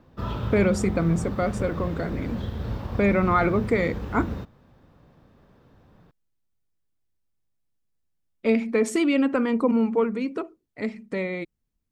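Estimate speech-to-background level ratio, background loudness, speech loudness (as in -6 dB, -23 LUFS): 8.0 dB, -32.5 LUFS, -24.5 LUFS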